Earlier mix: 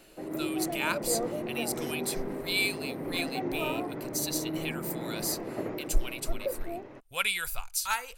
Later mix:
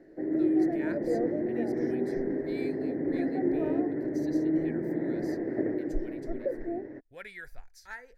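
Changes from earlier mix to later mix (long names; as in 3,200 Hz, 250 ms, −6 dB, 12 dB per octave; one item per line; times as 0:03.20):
speech −7.5 dB
master: add drawn EQ curve 200 Hz 0 dB, 300 Hz +9 dB, 720 Hz −3 dB, 1,200 Hz −17 dB, 1,800 Hz +7 dB, 2,700 Hz −22 dB, 5,400 Hz −11 dB, 8,200 Hz −24 dB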